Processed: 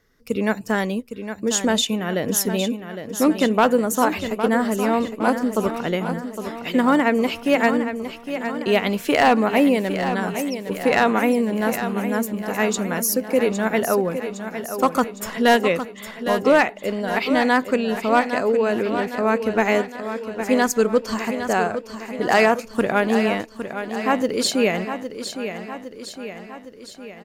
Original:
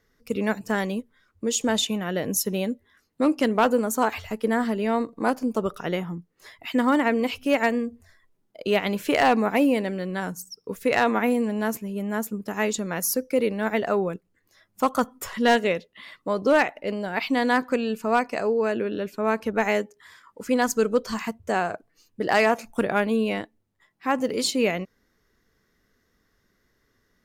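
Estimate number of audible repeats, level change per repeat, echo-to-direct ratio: 6, −5.0 dB, −8.0 dB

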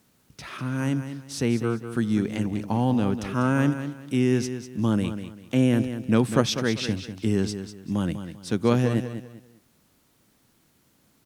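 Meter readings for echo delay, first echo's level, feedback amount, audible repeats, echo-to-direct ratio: 197 ms, −10.0 dB, 28%, 3, −9.5 dB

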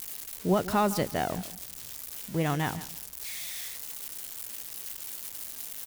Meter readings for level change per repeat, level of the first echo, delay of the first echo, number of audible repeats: −12.5 dB, −15.5 dB, 156 ms, 2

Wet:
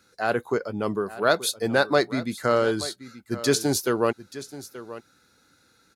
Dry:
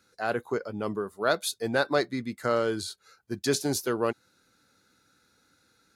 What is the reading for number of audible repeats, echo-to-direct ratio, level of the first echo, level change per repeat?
1, −15.5 dB, −15.5 dB, repeats not evenly spaced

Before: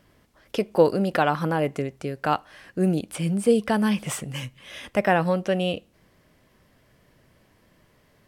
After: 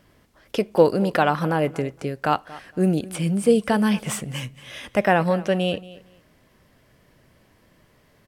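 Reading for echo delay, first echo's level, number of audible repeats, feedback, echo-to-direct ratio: 231 ms, −19.0 dB, 2, 20%, −19.0 dB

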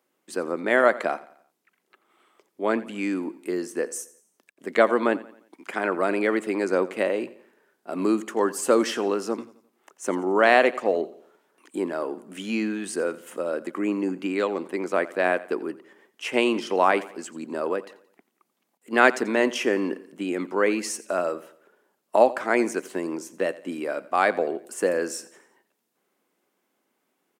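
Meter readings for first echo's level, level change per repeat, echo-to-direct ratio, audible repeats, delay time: −18.5 dB, −7.0 dB, −17.5 dB, 3, 87 ms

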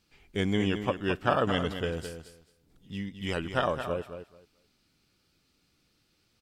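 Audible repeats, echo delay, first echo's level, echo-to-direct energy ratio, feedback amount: 2, 217 ms, −9.0 dB, −9.0 dB, 18%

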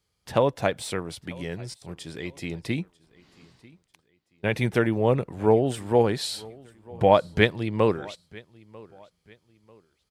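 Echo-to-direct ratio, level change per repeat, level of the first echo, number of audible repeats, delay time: −23.0 dB, −9.5 dB, −23.5 dB, 2, 943 ms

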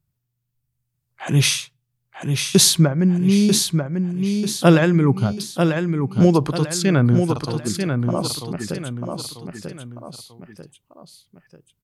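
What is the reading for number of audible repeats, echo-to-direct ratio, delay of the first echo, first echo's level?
3, −4.5 dB, 942 ms, −5.5 dB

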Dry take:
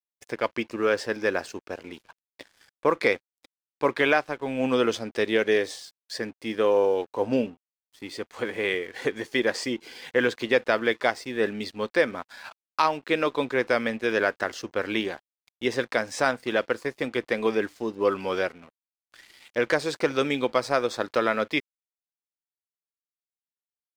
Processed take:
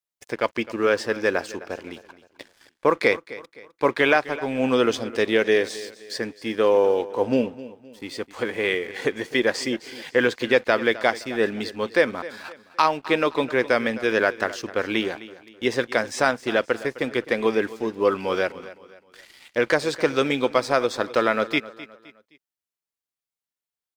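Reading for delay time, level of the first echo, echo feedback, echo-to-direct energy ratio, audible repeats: 259 ms, −17.0 dB, 38%, −16.5 dB, 3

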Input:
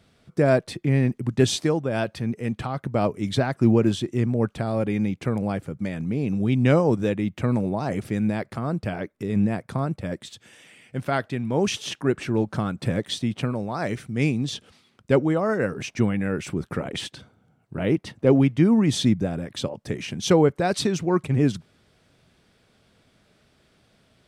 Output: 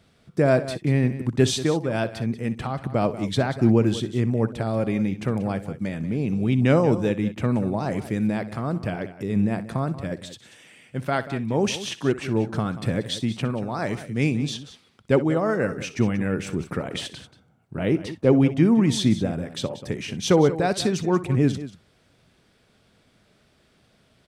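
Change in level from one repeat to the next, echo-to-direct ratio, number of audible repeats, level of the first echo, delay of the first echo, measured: repeats not evenly spaced, −12.0 dB, 2, −16.0 dB, 62 ms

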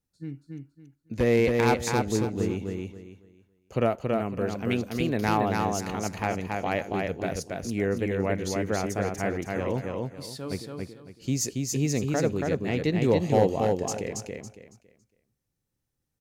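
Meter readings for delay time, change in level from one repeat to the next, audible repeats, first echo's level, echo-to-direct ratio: 278 ms, −11.5 dB, 3, −3.0 dB, −2.5 dB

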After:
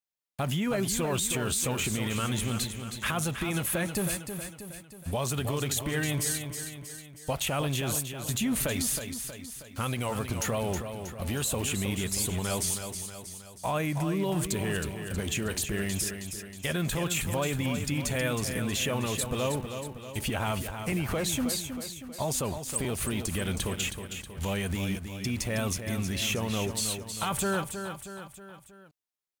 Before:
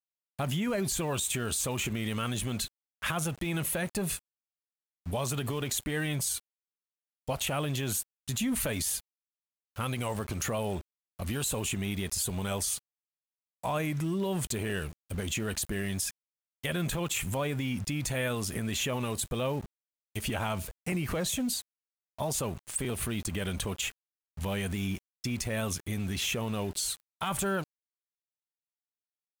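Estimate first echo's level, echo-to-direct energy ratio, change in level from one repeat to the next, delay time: −8.0 dB, −6.5 dB, −5.5 dB, 318 ms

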